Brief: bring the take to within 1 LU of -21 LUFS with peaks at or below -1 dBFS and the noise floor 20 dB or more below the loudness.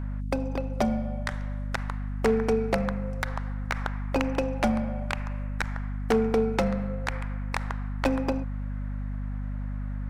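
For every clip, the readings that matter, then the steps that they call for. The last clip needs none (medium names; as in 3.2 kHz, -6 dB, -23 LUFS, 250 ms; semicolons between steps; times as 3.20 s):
clipped samples 0.5%; clipping level -16.5 dBFS; hum 50 Hz; highest harmonic 250 Hz; hum level -29 dBFS; loudness -29.5 LUFS; peak level -16.5 dBFS; loudness target -21.0 LUFS
-> clip repair -16.5 dBFS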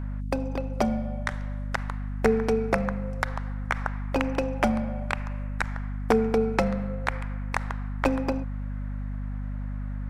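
clipped samples 0.0%; hum 50 Hz; highest harmonic 250 Hz; hum level -29 dBFS
-> de-hum 50 Hz, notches 5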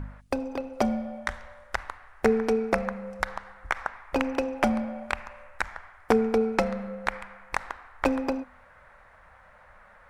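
hum not found; loudness -29.0 LUFS; peak level -7.0 dBFS; loudness target -21.0 LUFS
-> trim +8 dB; peak limiter -1 dBFS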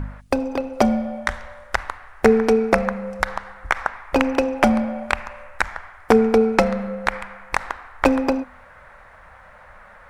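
loudness -21.5 LUFS; peak level -1.0 dBFS; noise floor -47 dBFS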